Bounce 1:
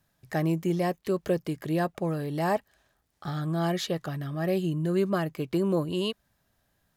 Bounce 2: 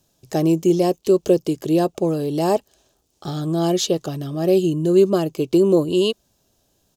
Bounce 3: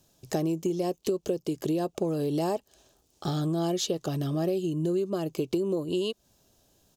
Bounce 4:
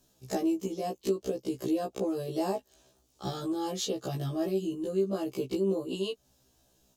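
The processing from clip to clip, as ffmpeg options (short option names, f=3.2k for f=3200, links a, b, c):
-af "firequalizer=gain_entry='entry(170,0);entry(370,9);entry(600,3);entry(1900,-11);entry(2700,3);entry(4300,5);entry(6400,11);entry(10000,3)':delay=0.05:min_phase=1,volume=4.5dB"
-af "acompressor=threshold=-25dB:ratio=10"
-af "afftfilt=real='re*1.73*eq(mod(b,3),0)':imag='im*1.73*eq(mod(b,3),0)':win_size=2048:overlap=0.75"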